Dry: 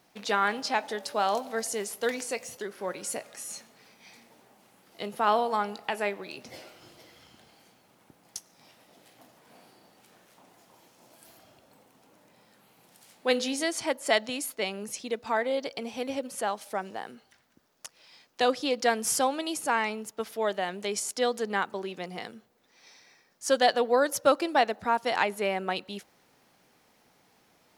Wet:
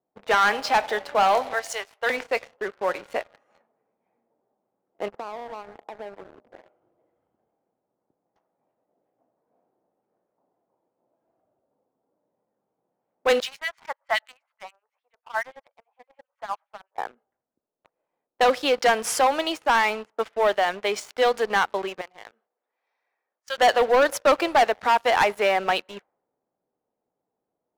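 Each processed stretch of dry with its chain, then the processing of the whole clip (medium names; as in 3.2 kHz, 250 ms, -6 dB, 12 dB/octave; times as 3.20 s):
1.53–2.10 s: ladder high-pass 460 Hz, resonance 25% + treble shelf 2 kHz +10 dB
5.08–6.55 s: low-pass 1.1 kHz + compression 12:1, threshold -38 dBFS
13.40–16.98 s: high-pass 870 Hz 24 dB/octave + harmonic tremolo 9.6 Hz, depth 100%, crossover 1.7 kHz
22.01–23.58 s: differentiator + level flattener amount 50%
whole clip: level-controlled noise filter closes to 410 Hz, open at -25.5 dBFS; three-band isolator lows -15 dB, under 430 Hz, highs -12 dB, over 3.4 kHz; waveshaping leveller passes 3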